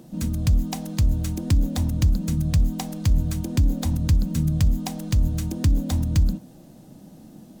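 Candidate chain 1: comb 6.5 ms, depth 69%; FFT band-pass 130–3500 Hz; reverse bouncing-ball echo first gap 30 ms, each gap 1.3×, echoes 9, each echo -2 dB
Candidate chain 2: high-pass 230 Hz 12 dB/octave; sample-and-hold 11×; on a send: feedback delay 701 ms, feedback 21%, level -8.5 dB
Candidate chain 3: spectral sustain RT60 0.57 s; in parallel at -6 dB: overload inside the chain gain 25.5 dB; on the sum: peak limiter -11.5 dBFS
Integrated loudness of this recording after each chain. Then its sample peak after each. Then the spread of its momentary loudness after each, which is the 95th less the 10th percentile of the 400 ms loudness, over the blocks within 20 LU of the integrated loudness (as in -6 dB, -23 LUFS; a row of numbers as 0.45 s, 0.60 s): -23.0 LUFS, -32.0 LUFS, -22.0 LUFS; -8.5 dBFS, -14.0 dBFS, -11.5 dBFS; 15 LU, 9 LU, 19 LU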